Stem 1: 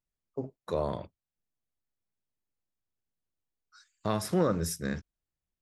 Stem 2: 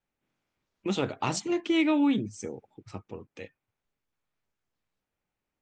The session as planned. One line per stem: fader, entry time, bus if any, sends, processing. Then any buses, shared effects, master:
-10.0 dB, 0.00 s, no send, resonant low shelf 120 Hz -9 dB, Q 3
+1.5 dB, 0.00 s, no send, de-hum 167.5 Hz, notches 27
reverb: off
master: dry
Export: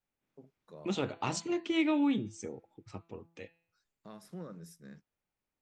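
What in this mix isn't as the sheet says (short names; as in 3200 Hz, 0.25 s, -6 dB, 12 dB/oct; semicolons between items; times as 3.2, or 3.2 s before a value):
stem 1 -10.0 dB -> -21.0 dB; stem 2 +1.5 dB -> -4.5 dB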